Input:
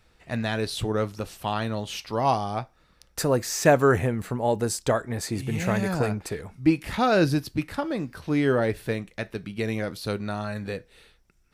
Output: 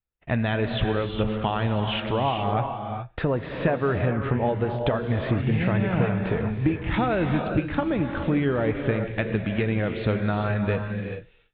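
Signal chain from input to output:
downward compressor 6 to 1, threshold −31 dBFS, peak gain reduction 17 dB
noise gate −51 dBFS, range −42 dB
Butterworth low-pass 3,500 Hz 72 dB per octave
low-shelf EQ 110 Hz +6.5 dB
reverb whose tail is shaped and stops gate 450 ms rising, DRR 4.5 dB
level +8.5 dB

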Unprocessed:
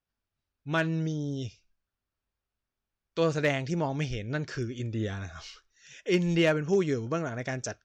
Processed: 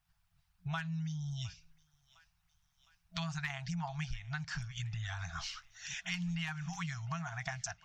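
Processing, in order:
brick-wall band-stop 180–650 Hz
parametric band 180 Hz +10 dB 0.62 octaves
harmonic and percussive parts rebalanced harmonic −11 dB
low-shelf EQ 73 Hz +8 dB
downward compressor 5 to 1, threshold −51 dBFS, peak gain reduction 21.5 dB
feedback echo with a high-pass in the loop 709 ms, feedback 69%, high-pass 970 Hz, level −20.5 dB
level +12.5 dB

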